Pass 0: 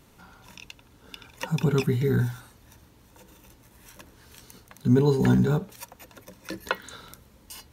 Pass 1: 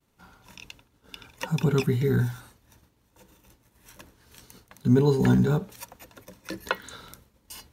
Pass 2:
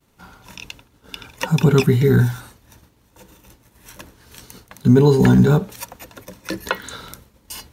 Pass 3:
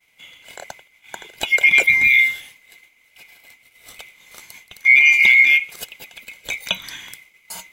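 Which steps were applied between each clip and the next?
expander -47 dBFS
maximiser +11.5 dB; gain -2.5 dB
band-swap scrambler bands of 2000 Hz

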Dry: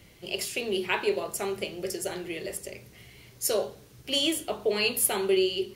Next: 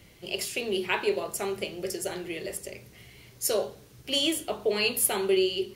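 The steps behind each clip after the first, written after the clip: nothing audible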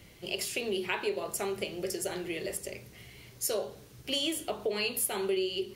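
compressor 2.5:1, threshold -30 dBFS, peak gain reduction 8 dB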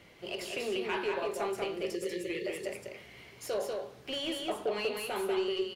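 spectral delete 1.77–2.46, 560–1700 Hz; overdrive pedal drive 17 dB, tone 1300 Hz, clips at -15.5 dBFS; echo 0.191 s -3.5 dB; gain -5.5 dB

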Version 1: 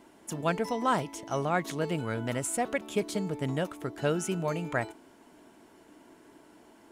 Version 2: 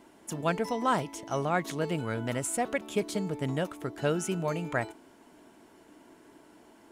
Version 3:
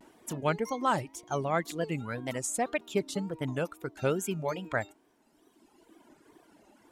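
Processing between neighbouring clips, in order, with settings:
nothing audible
reverb removal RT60 1.8 s; wow and flutter 150 cents

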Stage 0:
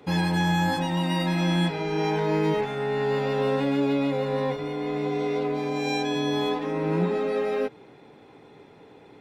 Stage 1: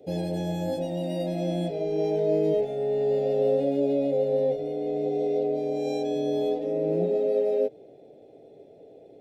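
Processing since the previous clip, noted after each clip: EQ curve 220 Hz 0 dB, 660 Hz +14 dB, 1000 Hz -23 dB, 3000 Hz -6 dB, 11000 Hz 0 dB; gain -6.5 dB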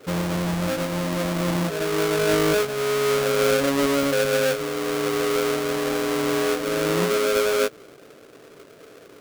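half-waves squared off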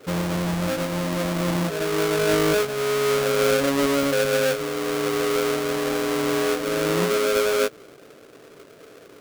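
nothing audible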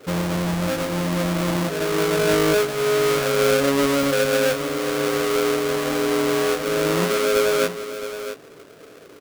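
echo 0.665 s -11 dB; gain +1.5 dB

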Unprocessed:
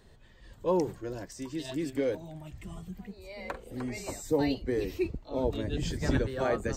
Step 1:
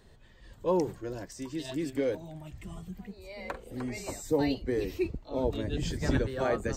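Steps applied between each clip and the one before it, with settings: nothing audible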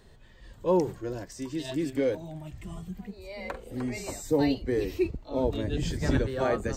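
harmonic-percussive split harmonic +4 dB; ending taper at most 380 dB/s

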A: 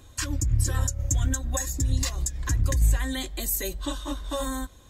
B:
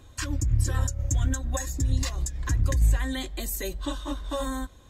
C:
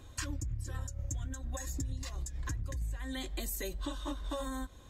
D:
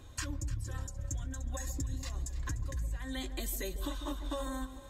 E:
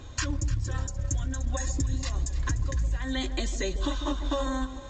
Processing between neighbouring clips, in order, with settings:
high shelf 5300 Hz -7 dB
compressor 12:1, threshold -32 dBFS, peak gain reduction 16 dB; gain -1.5 dB
echo with dull and thin repeats by turns 0.149 s, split 960 Hz, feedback 65%, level -10.5 dB
gain +8.5 dB; µ-law 128 kbps 16000 Hz

